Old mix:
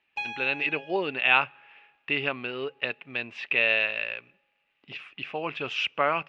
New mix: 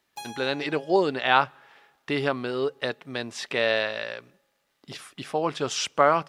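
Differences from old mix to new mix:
speech +7.0 dB; master: remove synth low-pass 2600 Hz, resonance Q 7.9

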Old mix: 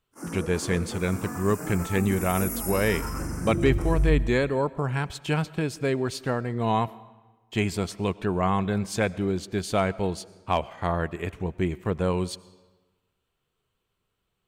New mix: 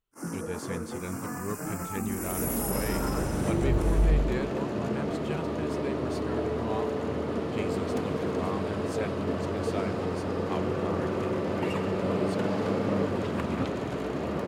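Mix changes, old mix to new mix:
speech -11.5 dB; second sound: unmuted

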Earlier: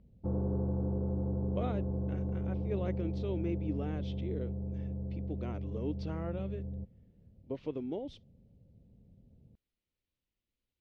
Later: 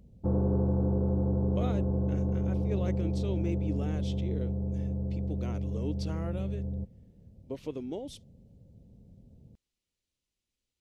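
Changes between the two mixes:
background +5.5 dB; master: remove air absorption 240 m

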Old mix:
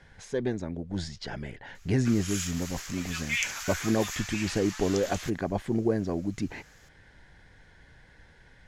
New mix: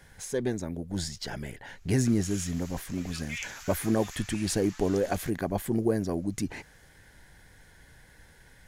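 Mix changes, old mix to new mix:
speech: remove LPF 4500 Hz 12 dB/oct; background -8.5 dB

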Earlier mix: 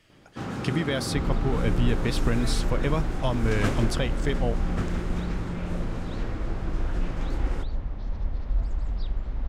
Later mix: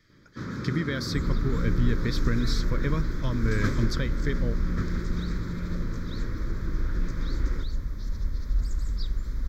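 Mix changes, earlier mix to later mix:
second sound: remove air absorption 240 m; master: add fixed phaser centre 2800 Hz, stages 6

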